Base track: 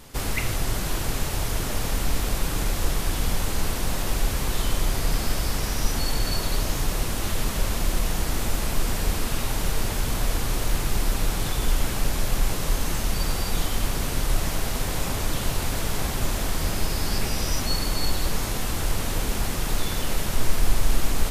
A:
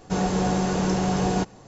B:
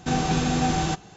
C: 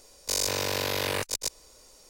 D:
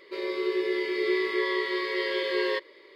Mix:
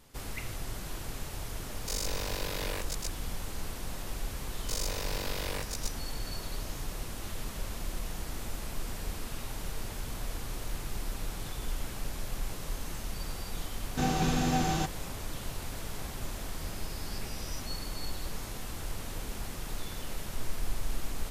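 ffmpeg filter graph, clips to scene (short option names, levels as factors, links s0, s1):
-filter_complex "[3:a]asplit=2[s0][s1];[0:a]volume=0.237[s2];[s0]atrim=end=2.09,asetpts=PTS-STARTPTS,volume=0.376,afade=t=in:d=0.004:c=hsin,afade=t=out:st=2.086:d=0.004:c=hsin,adelay=1590[s3];[s1]atrim=end=2.09,asetpts=PTS-STARTPTS,volume=0.355,afade=t=in:d=0.004:c=hsin,afade=t=out:st=2.086:d=0.004:c=hsin,adelay=4400[s4];[2:a]atrim=end=1.16,asetpts=PTS-STARTPTS,volume=0.531,afade=t=in:d=0.004:c=hsin,afade=t=out:st=1.156:d=0.004:c=hsin,adelay=13910[s5];[s2][s3][s4][s5]amix=inputs=4:normalize=0"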